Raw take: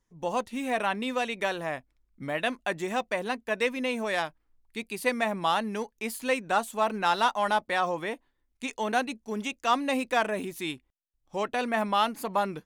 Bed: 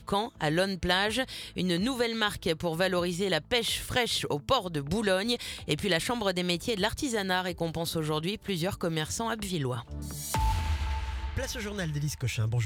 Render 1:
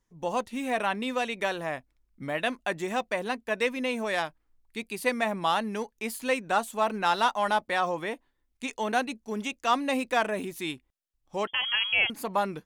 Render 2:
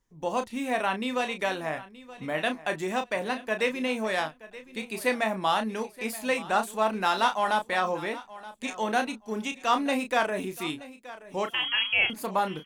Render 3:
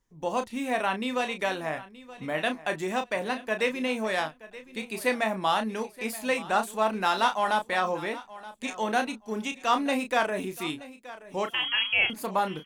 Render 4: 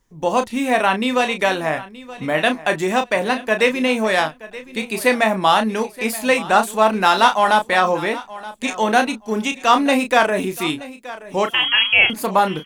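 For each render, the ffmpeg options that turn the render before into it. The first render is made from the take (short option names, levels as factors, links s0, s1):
-filter_complex "[0:a]asettb=1/sr,asplit=3[s0][s1][s2];[s0]atrim=end=11.474[s3];[s1]atrim=start=11.47:end=12.1,asetpts=PTS-STARTPTS,afade=t=in:d=0.004:c=qsin,afade=t=out:st=0.626:d=0.004:c=qsin,lowpass=f=3000:t=q:w=0.5098,lowpass=f=3000:t=q:w=0.6013,lowpass=f=3000:t=q:w=0.9,lowpass=f=3000:t=q:w=2.563,afreqshift=-3500[s4];[s2]atrim=start=12.096[s5];[s3][s4]acrossfade=d=0.004:c1=hsin:c2=qsin[s6];[s6][s5]acrossfade=d=0.004:c1=qsin:c2=hsin"
-filter_complex "[0:a]asplit=2[s0][s1];[s1]adelay=32,volume=0.398[s2];[s0][s2]amix=inputs=2:normalize=0,aecho=1:1:925|1850:0.133|0.0293"
-af anull
-af "volume=3.35,alimiter=limit=0.794:level=0:latency=1"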